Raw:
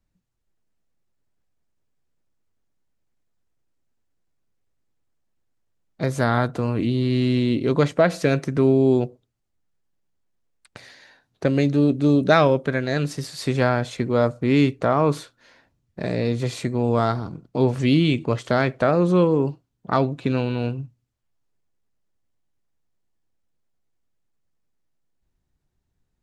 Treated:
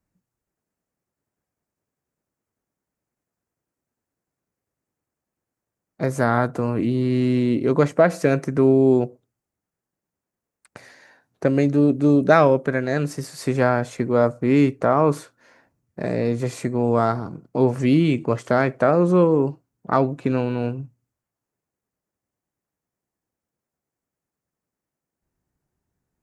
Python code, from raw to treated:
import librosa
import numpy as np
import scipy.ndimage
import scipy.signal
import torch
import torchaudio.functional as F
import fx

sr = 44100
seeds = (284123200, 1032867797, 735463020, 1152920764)

y = fx.highpass(x, sr, hz=150.0, slope=6)
y = fx.peak_eq(y, sr, hz=3600.0, db=-11.5, octaves=1.0)
y = F.gain(torch.from_numpy(y), 2.5).numpy()